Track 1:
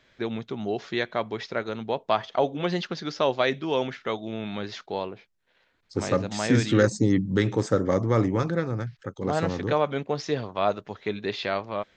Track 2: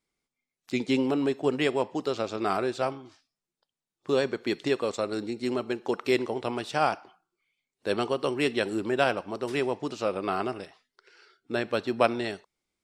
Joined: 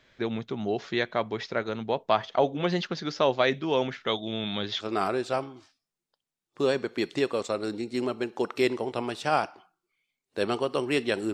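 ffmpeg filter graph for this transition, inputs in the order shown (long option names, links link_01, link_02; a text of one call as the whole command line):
ffmpeg -i cue0.wav -i cue1.wav -filter_complex "[0:a]asettb=1/sr,asplit=3[link_01][link_02][link_03];[link_01]atrim=end=4.074[link_04];[link_02]atrim=start=4.07:end=4.86,asetpts=PTS-STARTPTS,afade=type=in:duration=0.004:curve=qsin,afade=type=out:start_time=0.786:duration=0.004:curve=qsin,equalizer=frequency=3400:width_type=o:width=0.28:gain=14[link_05];[link_03]atrim=start=4.856[link_06];[link_04][link_05]acrossfade=duration=0.004:curve1=hsin:curve2=qsin[link_07];[link_07][link_06]acrossfade=duration=0.004:curve1=qsin:curve2=hsin,apad=whole_dur=11.33,atrim=end=11.33,atrim=end=4.86,asetpts=PTS-STARTPTS[link_08];[1:a]atrim=start=2.27:end=8.82,asetpts=PTS-STARTPTS[link_09];[link_08][link_09]acrossfade=duration=0.08:curve1=tri:curve2=tri" out.wav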